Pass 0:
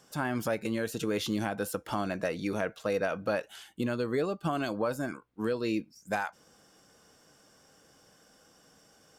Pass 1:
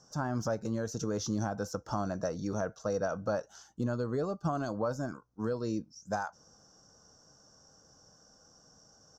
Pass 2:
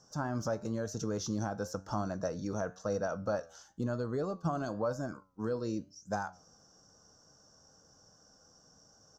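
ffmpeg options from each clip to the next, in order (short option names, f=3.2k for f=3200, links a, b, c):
-af "firequalizer=gain_entry='entry(110,0);entry(180,-4);entry(340,-9);entry(610,-5);entry(1400,-7);entry(2200,-26);entry(3600,-18);entry(5900,4);entry(9200,-27);entry(14000,-21)':delay=0.05:min_phase=1,volume=4dB"
-af "flanger=delay=9.2:depth=3.2:regen=85:speed=0.99:shape=triangular,volume=3dB"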